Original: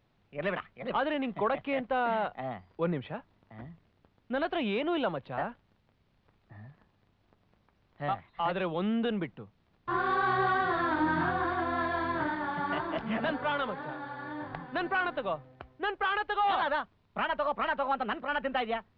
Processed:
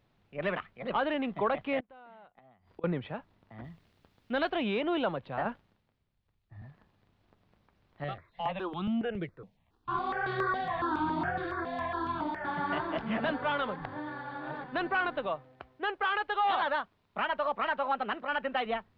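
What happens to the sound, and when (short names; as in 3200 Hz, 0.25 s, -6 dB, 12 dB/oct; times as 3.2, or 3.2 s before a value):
1.8–2.84 flipped gate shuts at -32 dBFS, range -24 dB
3.64–4.5 high shelf 2700 Hz +10 dB
5.45–6.62 three-band expander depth 70%
8.04–12.45 step phaser 7.2 Hz 250–1900 Hz
13.76–14.64 reverse
15.27–18.66 low shelf 190 Hz -8.5 dB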